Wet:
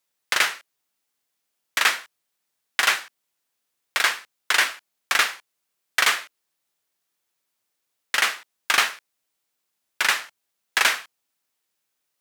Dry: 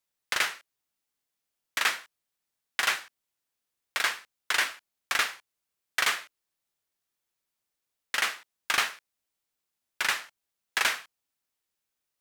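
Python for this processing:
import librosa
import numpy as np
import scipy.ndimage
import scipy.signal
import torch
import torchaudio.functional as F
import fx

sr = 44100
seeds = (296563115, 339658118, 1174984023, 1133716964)

y = scipy.signal.sosfilt(scipy.signal.butter(2, 72.0, 'highpass', fs=sr, output='sos'), x)
y = fx.low_shelf(y, sr, hz=140.0, db=-7.0)
y = F.gain(torch.from_numpy(y), 6.5).numpy()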